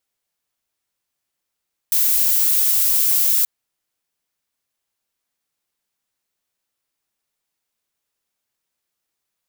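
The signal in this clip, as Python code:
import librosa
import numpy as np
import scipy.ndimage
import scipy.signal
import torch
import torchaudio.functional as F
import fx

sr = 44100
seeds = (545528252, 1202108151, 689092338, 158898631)

y = fx.noise_colour(sr, seeds[0], length_s=1.53, colour='violet', level_db=-16.5)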